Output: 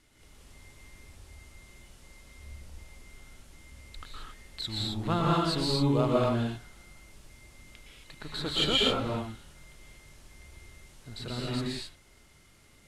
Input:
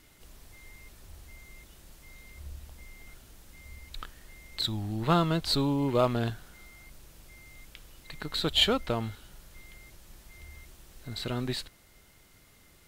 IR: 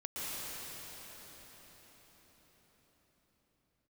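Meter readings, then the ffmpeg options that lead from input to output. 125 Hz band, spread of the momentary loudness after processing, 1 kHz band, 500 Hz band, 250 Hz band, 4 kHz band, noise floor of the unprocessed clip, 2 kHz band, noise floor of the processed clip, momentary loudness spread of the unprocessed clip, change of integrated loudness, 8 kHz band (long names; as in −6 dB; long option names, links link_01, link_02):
+0.5 dB, 22 LU, 0.0 dB, +0.5 dB, +0.5 dB, 0.0 dB, −59 dBFS, 0.0 dB, −59 dBFS, 22 LU, 0.0 dB, −0.5 dB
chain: -filter_complex "[0:a]lowpass=frequency=11000:width=0.5412,lowpass=frequency=11000:width=1.3066[link_01];[1:a]atrim=start_sample=2205,afade=type=out:start_time=0.33:duration=0.01,atrim=end_sample=14994[link_02];[link_01][link_02]afir=irnorm=-1:irlink=0"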